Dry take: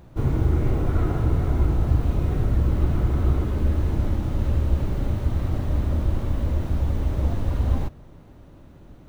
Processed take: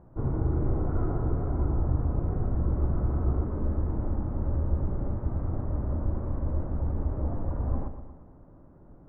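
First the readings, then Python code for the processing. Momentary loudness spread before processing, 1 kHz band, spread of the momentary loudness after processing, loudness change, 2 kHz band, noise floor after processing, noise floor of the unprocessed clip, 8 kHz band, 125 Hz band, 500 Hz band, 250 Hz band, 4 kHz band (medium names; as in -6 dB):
4 LU, -4.5 dB, 4 LU, -6.0 dB, -12.5 dB, -52 dBFS, -47 dBFS, no reading, -6.0 dB, -4.0 dB, -5.0 dB, under -35 dB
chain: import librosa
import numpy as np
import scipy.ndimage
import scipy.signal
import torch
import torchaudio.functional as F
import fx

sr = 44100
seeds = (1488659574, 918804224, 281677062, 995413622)

p1 = scipy.signal.sosfilt(scipy.signal.butter(4, 1300.0, 'lowpass', fs=sr, output='sos'), x)
p2 = fx.peak_eq(p1, sr, hz=67.0, db=-3.0, octaves=2.5)
p3 = p2 + fx.echo_feedback(p2, sr, ms=118, feedback_pct=55, wet_db=-10, dry=0)
y = p3 * 10.0 ** (-4.5 / 20.0)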